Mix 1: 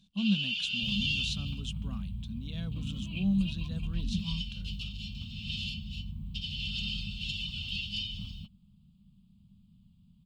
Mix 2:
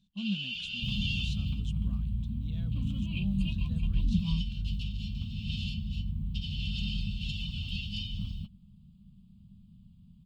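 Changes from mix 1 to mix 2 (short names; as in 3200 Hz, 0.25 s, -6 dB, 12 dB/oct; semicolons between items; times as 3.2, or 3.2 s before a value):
speech -9.5 dB; first sound -4.0 dB; master: add low shelf 300 Hz +6.5 dB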